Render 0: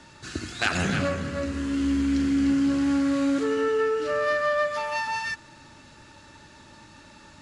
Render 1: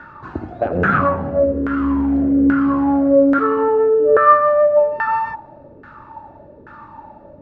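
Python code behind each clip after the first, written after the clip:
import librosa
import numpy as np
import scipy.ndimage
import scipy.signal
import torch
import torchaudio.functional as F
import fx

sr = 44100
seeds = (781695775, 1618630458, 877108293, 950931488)

y = fx.filter_lfo_lowpass(x, sr, shape='saw_down', hz=1.2, low_hz=440.0, high_hz=1500.0, q=7.1)
y = y * librosa.db_to_amplitude(5.5)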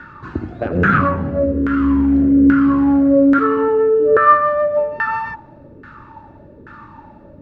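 y = fx.peak_eq(x, sr, hz=730.0, db=-11.0, octaves=1.1)
y = y * librosa.db_to_amplitude(4.5)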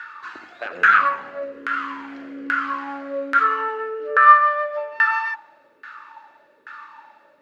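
y = scipy.signal.sosfilt(scipy.signal.butter(2, 1500.0, 'highpass', fs=sr, output='sos'), x)
y = y * librosa.db_to_amplitude(5.5)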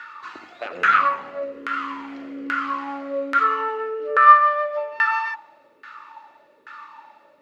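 y = fx.peak_eq(x, sr, hz=1600.0, db=-11.0, octaves=0.21)
y = y * librosa.db_to_amplitude(1.0)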